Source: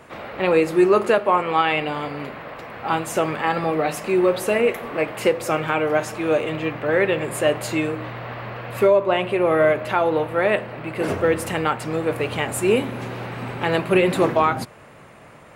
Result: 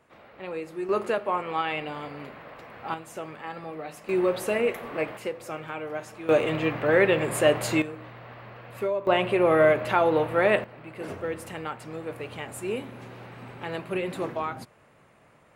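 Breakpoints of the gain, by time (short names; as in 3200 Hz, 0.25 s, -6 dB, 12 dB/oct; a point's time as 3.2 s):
-17 dB
from 0.89 s -9 dB
from 2.94 s -15.5 dB
from 4.09 s -6 dB
from 5.17 s -13.5 dB
from 6.29 s -1 dB
from 7.82 s -12 dB
from 9.07 s -2 dB
from 10.64 s -12.5 dB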